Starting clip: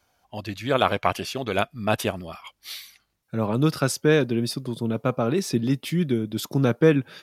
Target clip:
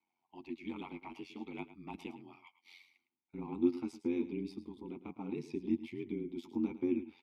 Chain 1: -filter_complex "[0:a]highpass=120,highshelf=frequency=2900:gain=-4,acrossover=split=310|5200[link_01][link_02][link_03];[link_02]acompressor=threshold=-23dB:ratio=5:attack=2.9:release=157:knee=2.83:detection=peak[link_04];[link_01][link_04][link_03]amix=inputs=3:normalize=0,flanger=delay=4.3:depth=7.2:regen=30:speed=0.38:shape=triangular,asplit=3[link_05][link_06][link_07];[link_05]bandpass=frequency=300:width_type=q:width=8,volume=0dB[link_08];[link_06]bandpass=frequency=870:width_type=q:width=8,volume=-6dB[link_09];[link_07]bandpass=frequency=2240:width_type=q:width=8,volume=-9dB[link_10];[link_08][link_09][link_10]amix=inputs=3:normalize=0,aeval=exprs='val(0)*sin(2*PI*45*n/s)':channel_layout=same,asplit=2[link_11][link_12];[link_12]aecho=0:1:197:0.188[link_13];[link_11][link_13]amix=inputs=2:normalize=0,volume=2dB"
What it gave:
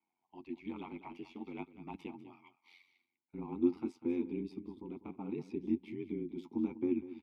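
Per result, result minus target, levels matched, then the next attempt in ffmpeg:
echo 89 ms late; 4,000 Hz band −5.5 dB
-filter_complex "[0:a]highpass=120,highshelf=frequency=2900:gain=-4,acrossover=split=310|5200[link_01][link_02][link_03];[link_02]acompressor=threshold=-23dB:ratio=5:attack=2.9:release=157:knee=2.83:detection=peak[link_04];[link_01][link_04][link_03]amix=inputs=3:normalize=0,flanger=delay=4.3:depth=7.2:regen=30:speed=0.38:shape=triangular,asplit=3[link_05][link_06][link_07];[link_05]bandpass=frequency=300:width_type=q:width=8,volume=0dB[link_08];[link_06]bandpass=frequency=870:width_type=q:width=8,volume=-6dB[link_09];[link_07]bandpass=frequency=2240:width_type=q:width=8,volume=-9dB[link_10];[link_08][link_09][link_10]amix=inputs=3:normalize=0,aeval=exprs='val(0)*sin(2*PI*45*n/s)':channel_layout=same,asplit=2[link_11][link_12];[link_12]aecho=0:1:108:0.188[link_13];[link_11][link_13]amix=inputs=2:normalize=0,volume=2dB"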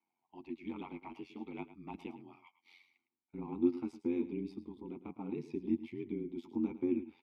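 4,000 Hz band −5.5 dB
-filter_complex "[0:a]highpass=120,highshelf=frequency=2900:gain=5.5,acrossover=split=310|5200[link_01][link_02][link_03];[link_02]acompressor=threshold=-23dB:ratio=5:attack=2.9:release=157:knee=2.83:detection=peak[link_04];[link_01][link_04][link_03]amix=inputs=3:normalize=0,flanger=delay=4.3:depth=7.2:regen=30:speed=0.38:shape=triangular,asplit=3[link_05][link_06][link_07];[link_05]bandpass=frequency=300:width_type=q:width=8,volume=0dB[link_08];[link_06]bandpass=frequency=870:width_type=q:width=8,volume=-6dB[link_09];[link_07]bandpass=frequency=2240:width_type=q:width=8,volume=-9dB[link_10];[link_08][link_09][link_10]amix=inputs=3:normalize=0,aeval=exprs='val(0)*sin(2*PI*45*n/s)':channel_layout=same,asplit=2[link_11][link_12];[link_12]aecho=0:1:108:0.188[link_13];[link_11][link_13]amix=inputs=2:normalize=0,volume=2dB"

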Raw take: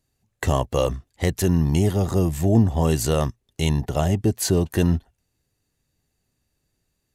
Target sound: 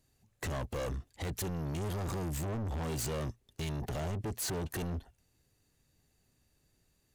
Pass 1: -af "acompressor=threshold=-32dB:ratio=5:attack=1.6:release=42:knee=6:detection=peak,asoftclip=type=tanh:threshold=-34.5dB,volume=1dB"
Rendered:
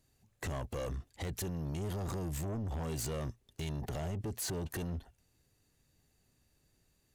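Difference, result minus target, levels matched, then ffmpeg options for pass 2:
downward compressor: peak gain reduction +7 dB
-af "acompressor=threshold=-23.5dB:ratio=5:attack=1.6:release=42:knee=6:detection=peak,asoftclip=type=tanh:threshold=-34.5dB,volume=1dB"

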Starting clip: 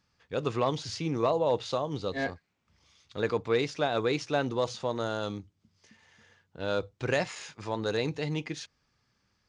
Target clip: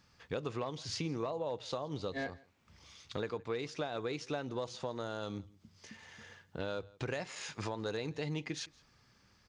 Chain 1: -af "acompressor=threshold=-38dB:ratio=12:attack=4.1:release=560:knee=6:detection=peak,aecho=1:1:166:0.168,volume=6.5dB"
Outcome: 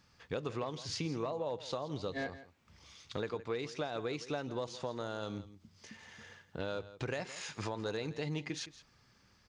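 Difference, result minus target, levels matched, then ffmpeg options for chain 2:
echo-to-direct +8.5 dB
-af "acompressor=threshold=-38dB:ratio=12:attack=4.1:release=560:knee=6:detection=peak,aecho=1:1:166:0.0631,volume=6.5dB"

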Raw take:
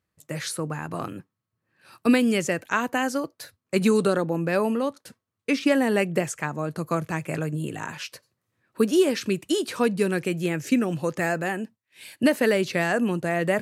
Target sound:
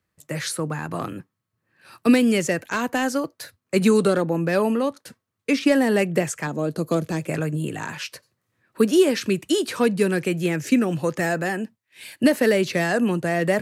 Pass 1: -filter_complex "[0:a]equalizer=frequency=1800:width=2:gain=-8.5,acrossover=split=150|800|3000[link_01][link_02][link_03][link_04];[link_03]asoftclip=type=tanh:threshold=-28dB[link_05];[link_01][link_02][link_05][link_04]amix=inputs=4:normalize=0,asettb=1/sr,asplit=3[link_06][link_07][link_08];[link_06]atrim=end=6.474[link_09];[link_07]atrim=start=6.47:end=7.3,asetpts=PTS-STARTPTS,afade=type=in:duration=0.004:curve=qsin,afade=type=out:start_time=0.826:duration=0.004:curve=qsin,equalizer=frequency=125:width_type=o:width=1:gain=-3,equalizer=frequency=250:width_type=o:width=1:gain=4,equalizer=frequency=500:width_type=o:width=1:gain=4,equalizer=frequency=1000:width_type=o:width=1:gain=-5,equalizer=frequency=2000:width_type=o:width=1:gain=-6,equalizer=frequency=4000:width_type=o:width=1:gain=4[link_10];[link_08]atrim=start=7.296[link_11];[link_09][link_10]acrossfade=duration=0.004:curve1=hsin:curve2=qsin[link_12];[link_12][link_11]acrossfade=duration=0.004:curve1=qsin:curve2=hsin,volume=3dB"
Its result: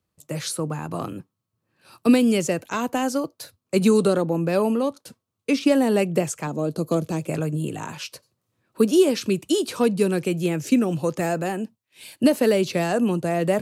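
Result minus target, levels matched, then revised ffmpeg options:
2,000 Hz band −6.0 dB
-filter_complex "[0:a]equalizer=frequency=1800:width=2:gain=2,acrossover=split=150|800|3000[link_01][link_02][link_03][link_04];[link_03]asoftclip=type=tanh:threshold=-28dB[link_05];[link_01][link_02][link_05][link_04]amix=inputs=4:normalize=0,asettb=1/sr,asplit=3[link_06][link_07][link_08];[link_06]atrim=end=6.474[link_09];[link_07]atrim=start=6.47:end=7.3,asetpts=PTS-STARTPTS,afade=type=in:duration=0.004:curve=qsin,afade=type=out:start_time=0.826:duration=0.004:curve=qsin,equalizer=frequency=125:width_type=o:width=1:gain=-3,equalizer=frequency=250:width_type=o:width=1:gain=4,equalizer=frequency=500:width_type=o:width=1:gain=4,equalizer=frequency=1000:width_type=o:width=1:gain=-5,equalizer=frequency=2000:width_type=o:width=1:gain=-6,equalizer=frequency=4000:width_type=o:width=1:gain=4[link_10];[link_08]atrim=start=7.296[link_11];[link_09][link_10]acrossfade=duration=0.004:curve1=hsin:curve2=qsin[link_12];[link_12][link_11]acrossfade=duration=0.004:curve1=qsin:curve2=hsin,volume=3dB"

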